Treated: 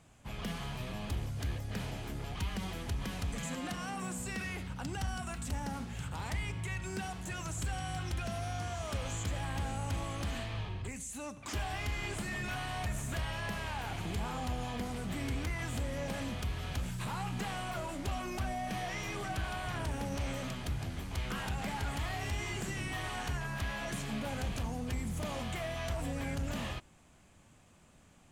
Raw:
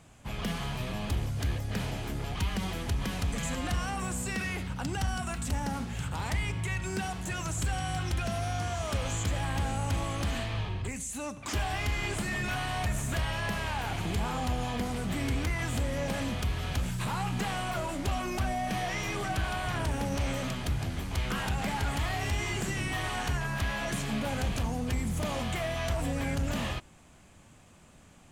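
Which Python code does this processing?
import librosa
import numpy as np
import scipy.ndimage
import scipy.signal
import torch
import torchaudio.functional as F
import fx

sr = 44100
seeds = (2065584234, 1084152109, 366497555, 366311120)

y = fx.low_shelf_res(x, sr, hz=120.0, db=-12.5, q=1.5, at=(3.43, 4.19))
y = y * 10.0 ** (-5.5 / 20.0)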